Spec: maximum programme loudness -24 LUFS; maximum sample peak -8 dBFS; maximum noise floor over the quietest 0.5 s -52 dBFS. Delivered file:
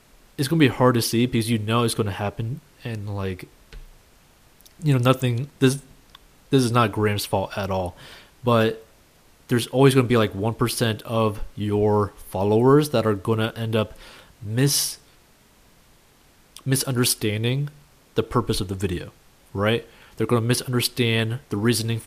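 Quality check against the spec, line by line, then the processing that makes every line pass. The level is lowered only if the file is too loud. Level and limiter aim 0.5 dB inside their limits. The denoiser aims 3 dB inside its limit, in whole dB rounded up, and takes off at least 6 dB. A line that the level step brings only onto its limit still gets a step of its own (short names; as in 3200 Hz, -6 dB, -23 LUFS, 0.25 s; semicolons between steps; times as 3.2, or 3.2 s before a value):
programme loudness -22.5 LUFS: fail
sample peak -4.5 dBFS: fail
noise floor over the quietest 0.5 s -55 dBFS: OK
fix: gain -2 dB; limiter -8.5 dBFS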